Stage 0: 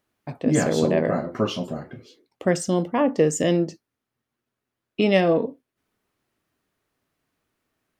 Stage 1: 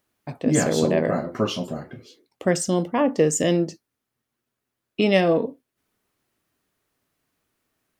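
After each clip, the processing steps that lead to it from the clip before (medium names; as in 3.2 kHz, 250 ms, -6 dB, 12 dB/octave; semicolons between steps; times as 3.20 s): treble shelf 5.1 kHz +6 dB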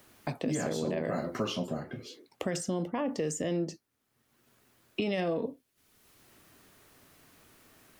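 peak limiter -17 dBFS, peak gain reduction 12 dB; three bands compressed up and down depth 70%; trim -5.5 dB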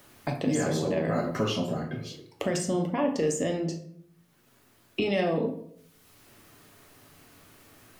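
reverberation RT60 0.65 s, pre-delay 7 ms, DRR 3.5 dB; trim +3 dB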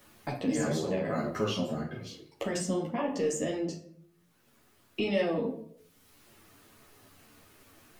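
three-phase chorus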